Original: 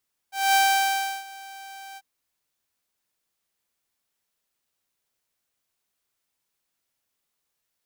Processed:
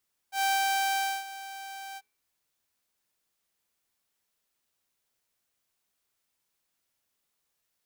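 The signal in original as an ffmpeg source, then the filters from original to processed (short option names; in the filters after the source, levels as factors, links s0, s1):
-f lavfi -i "aevalsrc='0.211*(2*mod(781*t,1)-1)':d=1.693:s=44100,afade=t=in:d=0.219,afade=t=out:st=0.219:d=0.697:silence=0.0708,afade=t=out:st=1.65:d=0.043"
-af "bandreject=f=137:t=h:w=4,bandreject=f=274:t=h:w=4,bandreject=f=411:t=h:w=4,bandreject=f=548:t=h:w=4,bandreject=f=685:t=h:w=4,bandreject=f=822:t=h:w=4,bandreject=f=959:t=h:w=4,bandreject=f=1096:t=h:w=4,bandreject=f=1233:t=h:w=4,bandreject=f=1370:t=h:w=4,bandreject=f=1507:t=h:w=4,bandreject=f=1644:t=h:w=4,bandreject=f=1781:t=h:w=4,bandreject=f=1918:t=h:w=4,bandreject=f=2055:t=h:w=4,bandreject=f=2192:t=h:w=4,bandreject=f=2329:t=h:w=4,bandreject=f=2466:t=h:w=4,bandreject=f=2603:t=h:w=4,bandreject=f=2740:t=h:w=4,bandreject=f=2877:t=h:w=4,bandreject=f=3014:t=h:w=4,bandreject=f=3151:t=h:w=4,bandreject=f=3288:t=h:w=4,bandreject=f=3425:t=h:w=4,bandreject=f=3562:t=h:w=4,bandreject=f=3699:t=h:w=4,bandreject=f=3836:t=h:w=4,bandreject=f=3973:t=h:w=4,bandreject=f=4110:t=h:w=4,bandreject=f=4247:t=h:w=4,bandreject=f=4384:t=h:w=4,bandreject=f=4521:t=h:w=4,bandreject=f=4658:t=h:w=4,acompressor=threshold=0.0562:ratio=6"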